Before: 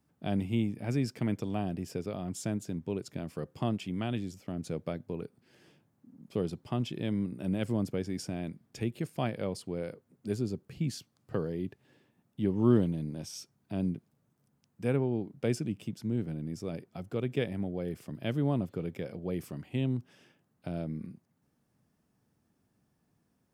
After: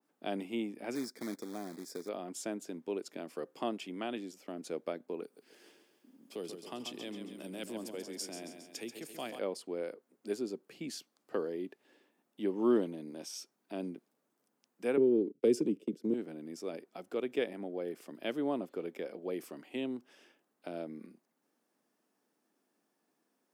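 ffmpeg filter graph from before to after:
-filter_complex "[0:a]asettb=1/sr,asplit=3[s0][s1][s2];[s0]atrim=end=0.954[s3];[s1]atrim=start=0.95:end=2.09,asetpts=PTS-STARTPTS,afade=t=in:d=0.004:c=qsin,afade=t=out:st=1.136:d=0.004:c=qsin,equalizer=f=800:t=o:w=2:g=-9,acrusher=bits=4:mode=log:mix=0:aa=0.000001,asuperstop=centerf=2800:order=4:qfactor=2.1[s4];[s2]atrim=start=2.086[s5];[s3][s4]acrossfade=d=0.004:c1=hsin:c2=qsin[s6];[s6][s5]acrossfade=d=0.004:c1=qsin:c2=hsin,asettb=1/sr,asplit=3[s7][s8][s9];[s7]atrim=end=5.234[s10];[s8]atrim=start=5.23:end=9.39,asetpts=PTS-STARTPTS,afade=t=in:d=0.004:c=qsin,afade=t=out:st=4.156:d=0.004:c=qsin,highshelf=f=5200:g=7,acrossover=split=150|3000[s11][s12][s13];[s12]acompressor=threshold=0.00355:ratio=1.5:attack=3.2:release=140:knee=2.83:detection=peak[s14];[s11][s14][s13]amix=inputs=3:normalize=0,aecho=1:1:136|272|408|544|680|816:0.422|0.219|0.114|0.0593|0.0308|0.016,atrim=end_sample=183456[s15];[s9]atrim=start=9.386[s16];[s10][s15]acrossfade=d=0.004:c1=hsin:c2=qsin[s17];[s17][s16]acrossfade=d=0.004:c1=qsin:c2=hsin,asettb=1/sr,asplit=3[s18][s19][s20];[s18]atrim=end=14.974[s21];[s19]atrim=start=14.97:end=16.14,asetpts=PTS-STARTPTS,afade=t=in:d=0.004:c=qsin,afade=t=out:st=1.166:d=0.004:c=qsin,agate=range=0.0224:threshold=0.00794:ratio=3:release=100:detection=peak,lowshelf=f=590:t=q:w=3:g=9.5,acrossover=split=200|3000[s22][s23][s24];[s23]acompressor=threshold=0.0282:ratio=2:attack=3.2:release=140:knee=2.83:detection=peak[s25];[s22][s25][s24]amix=inputs=3:normalize=0[s26];[s20]atrim=start=16.136[s27];[s21][s26]acrossfade=d=0.004:c1=hsin:c2=qsin[s28];[s28][s27]acrossfade=d=0.004:c1=qsin:c2=hsin,highpass=f=280:w=0.5412,highpass=f=280:w=1.3066,adynamicequalizer=threshold=0.00282:dfrequency=1900:dqfactor=0.7:tfrequency=1900:tqfactor=0.7:attack=5:release=100:ratio=0.375:range=2:mode=cutabove:tftype=highshelf"

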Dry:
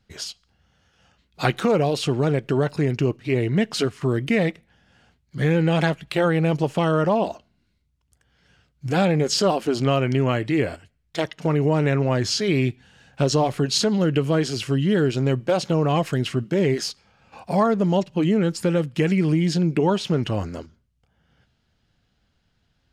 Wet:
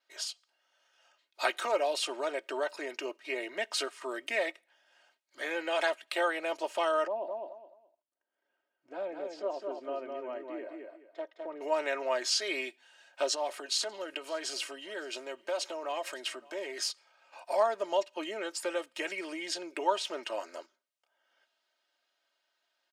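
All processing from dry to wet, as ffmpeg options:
-filter_complex "[0:a]asettb=1/sr,asplit=3[s0][s1][s2];[s0]atrim=end=7.074[s3];[s1]atrim=start=7.07:end=11.61,asetpts=PTS-STARTPTS,afade=t=in:d=0.004:c=qsin,afade=t=out:st=4.536:d=0.004:c=qsin,bandpass=f=160:t=q:w=0.65,aecho=1:1:210|420|630:0.631|0.151|0.0363,atrim=end_sample=200214[s4];[s2]atrim=start=11.606[s5];[s3][s4]acrossfade=d=0.004:c1=hsin:c2=qsin[s6];[s6][s5]acrossfade=d=0.004:c1=qsin:c2=hsin,asettb=1/sr,asplit=3[s7][s8][s9];[s7]atrim=end=13.334[s10];[s8]atrim=start=13.33:end=16.79,asetpts=PTS-STARTPTS,afade=t=in:d=0.004:c=qsin,afade=t=out:st=3.456:d=0.004:c=qsin,acompressor=threshold=0.0891:ratio=5:attack=3.2:release=140:knee=1:detection=peak,aecho=1:1:562:0.0668,atrim=end_sample=152586[s11];[s9]atrim=start=16.786[s12];[s10][s11]acrossfade=d=0.004:c1=hsin:c2=qsin[s13];[s13][s12]acrossfade=d=0.004:c1=qsin:c2=hsin,highpass=f=500:w=0.5412,highpass=f=500:w=1.3066,aecho=1:1:3.2:0.67,adynamicequalizer=threshold=0.00316:dfrequency=8600:dqfactor=3.3:tfrequency=8600:tqfactor=3.3:attack=5:release=100:ratio=0.375:range=2.5:mode=boostabove:tftype=bell,volume=0.473"

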